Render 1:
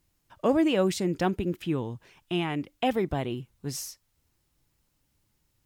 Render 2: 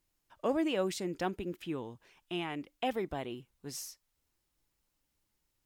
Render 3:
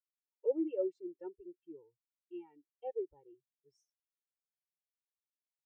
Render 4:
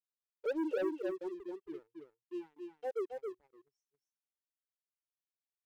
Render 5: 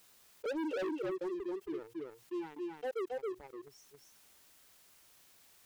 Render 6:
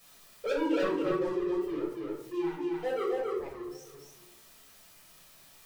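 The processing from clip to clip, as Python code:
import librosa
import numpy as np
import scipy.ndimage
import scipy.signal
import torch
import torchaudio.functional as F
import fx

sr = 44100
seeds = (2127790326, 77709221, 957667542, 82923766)

y1 = fx.peak_eq(x, sr, hz=110.0, db=-9.0, octaves=1.9)
y1 = F.gain(torch.from_numpy(y1), -6.0).numpy()
y2 = y1 + 0.88 * np.pad(y1, (int(2.2 * sr / 1000.0), 0))[:len(y1)]
y2 = fx.spectral_expand(y2, sr, expansion=2.5)
y2 = F.gain(torch.from_numpy(y2), -4.0).numpy()
y3 = fx.leveller(y2, sr, passes=3)
y3 = y3 + 10.0 ** (-5.0 / 20.0) * np.pad(y3, (int(272 * sr / 1000.0), 0))[:len(y3)]
y3 = F.gain(torch.from_numpy(y3), -7.0).numpy()
y4 = 10.0 ** (-37.5 / 20.0) * np.tanh(y3 / 10.0 ** (-37.5 / 20.0))
y4 = fx.env_flatten(y4, sr, amount_pct=50)
y4 = F.gain(torch.from_numpy(y4), 3.5).numpy()
y5 = y4 + 10.0 ** (-22.0 / 20.0) * np.pad(y4, (int(616 * sr / 1000.0), 0))[:len(y4)]
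y5 = fx.room_shoebox(y5, sr, seeds[0], volume_m3=580.0, walls='furnished', distance_m=6.0)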